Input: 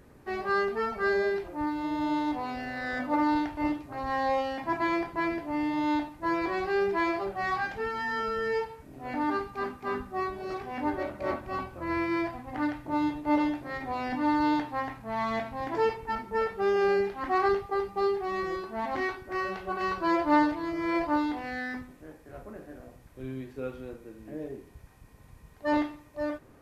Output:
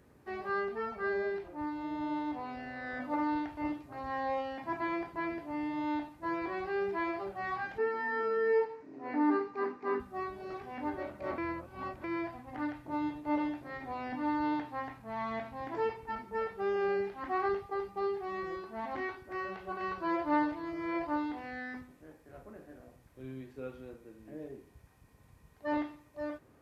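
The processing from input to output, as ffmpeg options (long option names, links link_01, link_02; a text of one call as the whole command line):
ffmpeg -i in.wav -filter_complex "[0:a]asettb=1/sr,asplit=3[link_01][link_02][link_03];[link_01]atrim=end=0.604[link_04];[link_02]atrim=start=0.6:end=3.02,asetpts=PTS-STARTPTS,afade=type=in:duration=0.004:curve=qsin,afade=type=out:start_time=2.416:duration=0.004:curve=qsin,highshelf=frequency=5300:gain=-6[link_05];[link_03]atrim=start=3.016[link_06];[link_04][link_05]acrossfade=duration=0.004:curve1=hsin:curve2=qsin[link_07];[link_07][link_06]acrossfade=duration=0.004:curve1=qsin:curve2=hsin,asettb=1/sr,asplit=3[link_08][link_09][link_10];[link_08]atrim=end=7.784[link_11];[link_09]atrim=start=7.78:end=10,asetpts=PTS-STARTPTS,afade=type=in:duration=0.004:curve=qsin,afade=type=out:start_time=2.216:duration=0.004:curve=qsin,highpass=200,equalizer=frequency=290:width_type=q:width=4:gain=10,equalizer=frequency=430:width_type=q:width=4:gain=9,equalizer=frequency=1000:width_type=q:width=4:gain=6,equalizer=frequency=1900:width_type=q:width=4:gain=5,equalizer=frequency=3300:width_type=q:width=4:gain=-8,lowpass=frequency=5800:width=0.5412,lowpass=frequency=5800:width=1.3066[link_12];[link_10]atrim=start=9.996[link_13];[link_11][link_12]acrossfade=duration=0.004:curve1=hsin:curve2=qsin[link_14];[link_14][link_13]acrossfade=duration=0.004:curve1=qsin:curve2=hsin,asplit=3[link_15][link_16][link_17];[link_15]atrim=end=11.382[link_18];[link_16]atrim=start=11.378:end=12.042,asetpts=PTS-STARTPTS,areverse[link_19];[link_17]atrim=start=12.038[link_20];[link_18][link_19]acrossfade=duration=0.004:curve1=hsin:curve2=hsin[link_21];[link_21][link_20]acrossfade=duration=0.004:curve1=hsin:curve2=hsin,acrossover=split=3500[link_22][link_23];[link_23]acompressor=threshold=-59dB:ratio=4:attack=1:release=60[link_24];[link_22][link_24]amix=inputs=2:normalize=0,highpass=49,volume=-6.5dB" out.wav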